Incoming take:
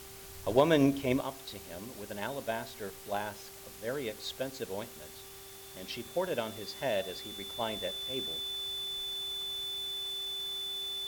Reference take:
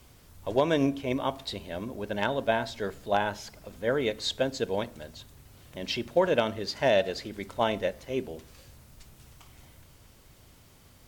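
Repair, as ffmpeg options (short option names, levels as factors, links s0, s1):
-af "bandreject=f=390.1:t=h:w=4,bandreject=f=780.2:t=h:w=4,bandreject=f=1170.3:t=h:w=4,bandreject=f=3500:w=30,afwtdn=0.0032,asetnsamples=n=441:p=0,asendcmd='1.21 volume volume 9dB',volume=1"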